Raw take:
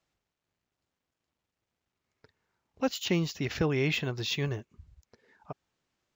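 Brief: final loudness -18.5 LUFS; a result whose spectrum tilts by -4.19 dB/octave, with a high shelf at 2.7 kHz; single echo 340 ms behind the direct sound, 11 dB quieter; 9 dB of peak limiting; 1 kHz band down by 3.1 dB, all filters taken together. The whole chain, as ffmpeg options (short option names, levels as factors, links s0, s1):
-af "equalizer=f=1000:t=o:g=-5.5,highshelf=f=2700:g=7,alimiter=level_in=1.06:limit=0.0631:level=0:latency=1,volume=0.944,aecho=1:1:340:0.282,volume=5.96"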